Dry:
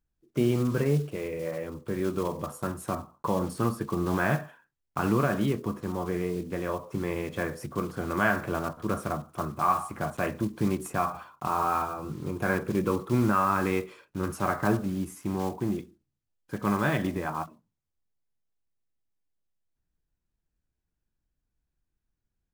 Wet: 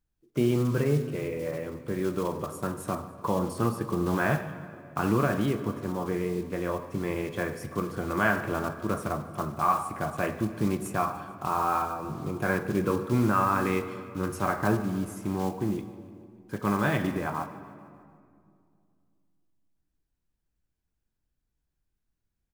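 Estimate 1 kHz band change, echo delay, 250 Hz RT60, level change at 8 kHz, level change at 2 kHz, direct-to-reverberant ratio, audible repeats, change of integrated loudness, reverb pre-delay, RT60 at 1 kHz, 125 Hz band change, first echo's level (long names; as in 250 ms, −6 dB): +0.5 dB, 148 ms, 3.0 s, 0.0 dB, +0.5 dB, 10.5 dB, 4, +0.5 dB, 17 ms, 2.2 s, +0.5 dB, −19.5 dB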